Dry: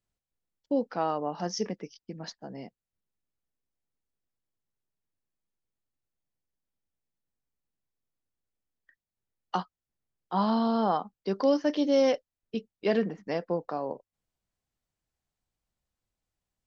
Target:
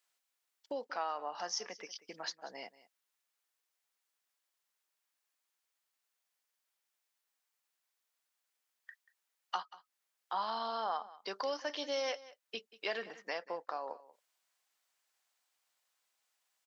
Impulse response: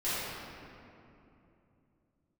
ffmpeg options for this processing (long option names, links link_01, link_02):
-af "highpass=970,acompressor=threshold=-54dB:ratio=2,aecho=1:1:186:0.119,volume=10dB"